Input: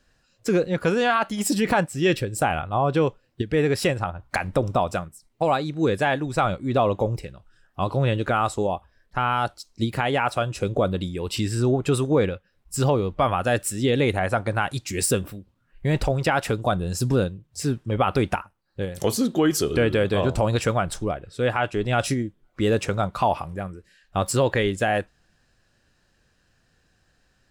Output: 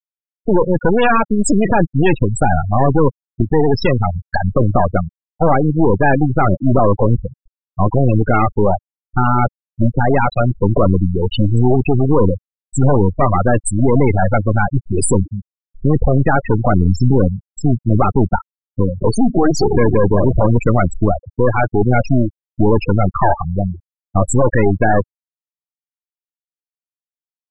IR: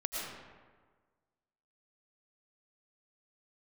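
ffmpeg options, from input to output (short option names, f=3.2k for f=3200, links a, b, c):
-af "apsyclip=20dB,aeval=exprs='clip(val(0),-1,0.0891)':c=same,afftfilt=real='re*gte(hypot(re,im),0.708)':imag='im*gte(hypot(re,im),0.708)':win_size=1024:overlap=0.75,volume=-3dB"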